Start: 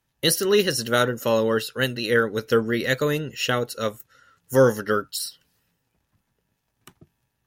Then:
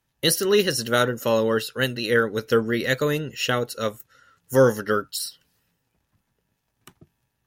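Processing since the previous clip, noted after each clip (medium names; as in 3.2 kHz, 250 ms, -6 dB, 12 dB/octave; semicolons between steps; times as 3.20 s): no audible change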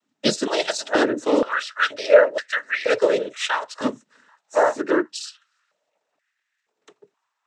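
noise-vocoded speech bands 12; step-sequenced high-pass 2.1 Hz 240–1800 Hz; trim -1 dB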